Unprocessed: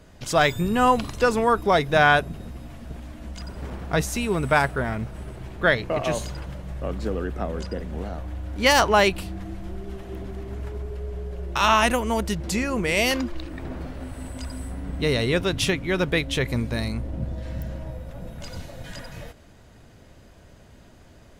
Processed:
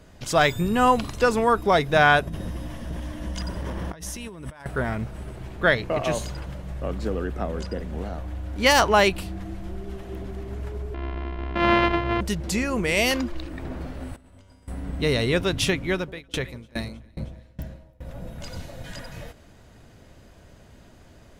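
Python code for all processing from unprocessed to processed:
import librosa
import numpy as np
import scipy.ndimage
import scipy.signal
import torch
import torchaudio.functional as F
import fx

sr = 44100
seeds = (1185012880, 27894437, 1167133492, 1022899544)

y = fx.chain(x, sr, fx.ripple_eq(per_octave=1.2, db=6),
    fx.over_compress(threshold_db=-34.0, ratio=-1.0), at=(2.27, 4.66))
y = fx.chain(y, sr, fx.sample_sort(block=128),
    fx.lowpass(hz=3000.0, slope=24),
    fx.doubler(ms=30.0, db=-11.5), at=(10.94, 12.21))
y = fx.chain(y, sr, fx.high_shelf(hz=6300.0, db=-8.0),
    fx.over_compress(threshold_db=-35.0, ratio=-0.5),
    fx.comb_fb(f0_hz=96.0, decay_s=1.7, harmonics='all', damping=0.0, mix_pct=90), at=(14.16, 14.68))
y = fx.chain(y, sr, fx.echo_alternate(ms=157, hz=940.0, feedback_pct=70, wet_db=-10.5),
    fx.tremolo_decay(direction='decaying', hz=2.4, depth_db=27), at=(15.92, 18.05))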